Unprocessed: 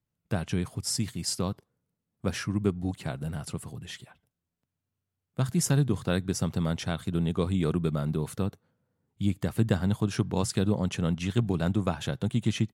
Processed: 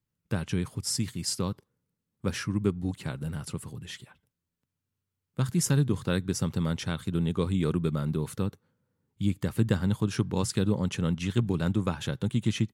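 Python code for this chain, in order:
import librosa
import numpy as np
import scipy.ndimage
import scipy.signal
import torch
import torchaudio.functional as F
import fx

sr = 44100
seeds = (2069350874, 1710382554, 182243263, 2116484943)

y = fx.peak_eq(x, sr, hz=690.0, db=-11.5, octaves=0.24)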